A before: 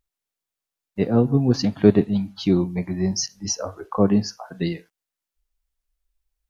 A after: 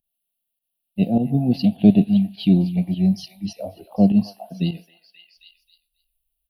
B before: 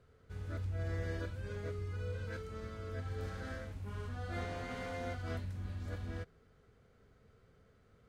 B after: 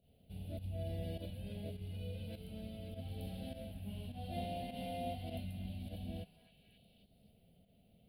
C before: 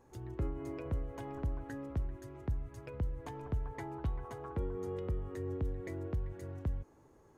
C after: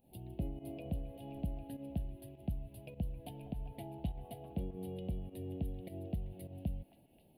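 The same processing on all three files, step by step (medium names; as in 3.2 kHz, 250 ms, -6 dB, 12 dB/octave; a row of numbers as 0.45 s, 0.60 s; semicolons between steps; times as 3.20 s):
FFT filter 120 Hz 0 dB, 190 Hz +11 dB, 430 Hz -6 dB, 690 Hz +9 dB, 1.2 kHz -28 dB, 1.9 kHz -15 dB, 2.8 kHz +10 dB, 4.4 kHz +2 dB, 6.6 kHz -24 dB, 10 kHz +14 dB; volume shaper 102 bpm, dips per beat 1, -13 dB, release 96 ms; on a send: repeats whose band climbs or falls 267 ms, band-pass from 1.3 kHz, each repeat 0.7 oct, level -5.5 dB; on the sum: trim -4 dB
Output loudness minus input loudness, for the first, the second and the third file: +2.5 LU, -3.0 LU, -3.0 LU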